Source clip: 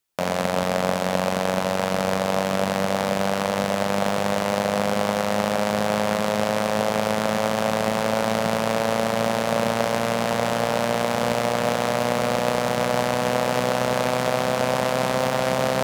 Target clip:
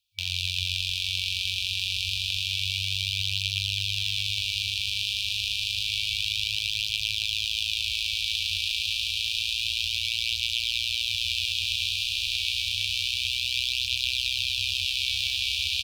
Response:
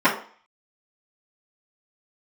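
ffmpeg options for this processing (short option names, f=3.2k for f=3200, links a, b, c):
-filter_complex "[0:a]firequalizer=gain_entry='entry(1800,0);entry(3500,10);entry(7000,-6)':delay=0.05:min_phase=1,afftfilt=real='re*(1-between(b*sr/4096,100,2300))':imag='im*(1-between(b*sr/4096,100,2300))':win_size=4096:overlap=0.75,lowshelf=f=100:g=5.5,bandreject=f=60:t=h:w=6,bandreject=f=120:t=h:w=6,bandreject=f=180:t=h:w=6,bandreject=f=240:t=h:w=6,bandreject=f=300:t=h:w=6,bandreject=f=360:t=h:w=6,bandreject=f=420:t=h:w=6,bandreject=f=480:t=h:w=6,bandreject=f=540:t=h:w=6,bandreject=f=600:t=h:w=6,asplit=2[a][b];[b]aecho=0:1:112|224|336|448:0.531|0.165|0.051|0.0158[c];[a][c]amix=inputs=2:normalize=0"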